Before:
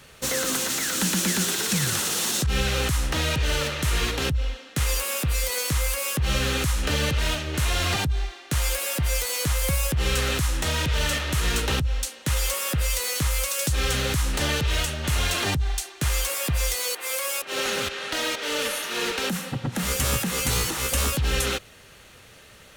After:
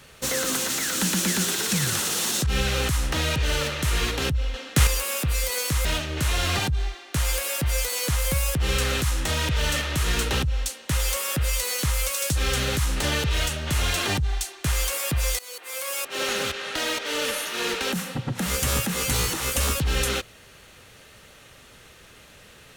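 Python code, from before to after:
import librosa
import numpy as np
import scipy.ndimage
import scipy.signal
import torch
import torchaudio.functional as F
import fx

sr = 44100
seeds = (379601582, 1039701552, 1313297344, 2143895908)

y = fx.edit(x, sr, fx.clip_gain(start_s=4.54, length_s=0.33, db=6.5),
    fx.cut(start_s=5.85, length_s=1.37),
    fx.fade_in_from(start_s=16.76, length_s=0.67, floor_db=-18.0), tone=tone)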